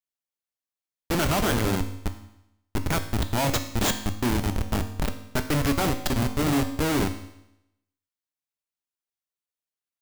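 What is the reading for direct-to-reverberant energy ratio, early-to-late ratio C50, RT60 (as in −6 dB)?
7.0 dB, 10.5 dB, 0.85 s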